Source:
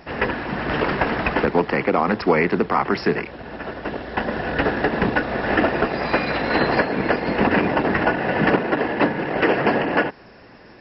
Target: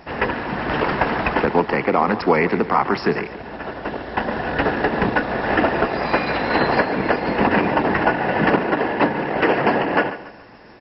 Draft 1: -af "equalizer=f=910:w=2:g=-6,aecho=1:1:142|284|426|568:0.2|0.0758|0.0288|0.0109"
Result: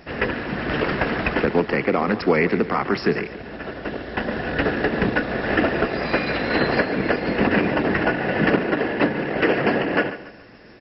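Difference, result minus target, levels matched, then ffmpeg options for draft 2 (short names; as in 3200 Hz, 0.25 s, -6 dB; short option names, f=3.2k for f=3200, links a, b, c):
1000 Hz band -4.5 dB
-af "equalizer=f=910:w=2:g=3.5,aecho=1:1:142|284|426|568:0.2|0.0758|0.0288|0.0109"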